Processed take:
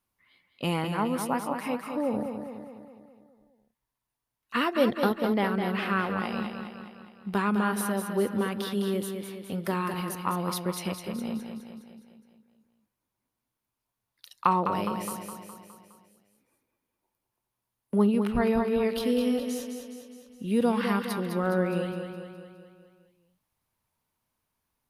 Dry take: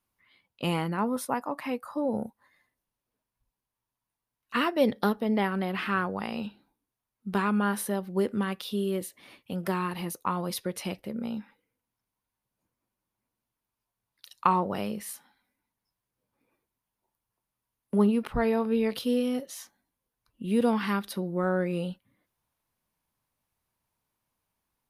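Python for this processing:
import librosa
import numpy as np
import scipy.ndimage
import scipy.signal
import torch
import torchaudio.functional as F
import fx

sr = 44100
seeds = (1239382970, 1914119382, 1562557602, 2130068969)

y = fx.echo_feedback(x, sr, ms=207, feedback_pct=55, wet_db=-7)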